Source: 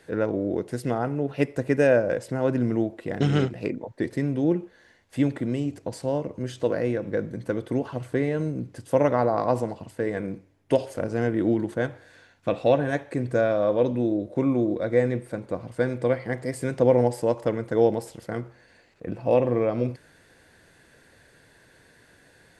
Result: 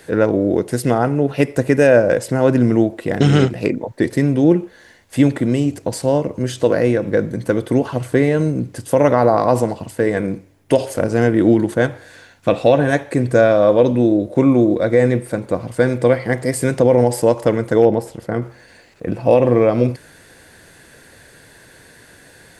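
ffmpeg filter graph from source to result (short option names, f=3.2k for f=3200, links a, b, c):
-filter_complex "[0:a]asettb=1/sr,asplit=3[a][b][c];[a]atrim=end=17.824[d];[b]atrim=start=17.82:end=18.42,asetpts=PTS-STARTPTS,afade=t=in:d=0.004:c=qsin,afade=t=out:st=0.596:d=0.004:c=qsin,highshelf=f=2.6k:g=-12,asoftclip=type=hard:threshold=-9.5dB[e];[c]atrim=start=18.416[f];[d][e]acrossfade=d=0.004:c1=hsin:c2=qsin[g];[g][f]acrossfade=d=0.004:c1=qsin:c2=hsin,highshelf=f=7.8k:g=9,alimiter=level_in=11dB:limit=-1dB:release=50:level=0:latency=1,volume=-1dB"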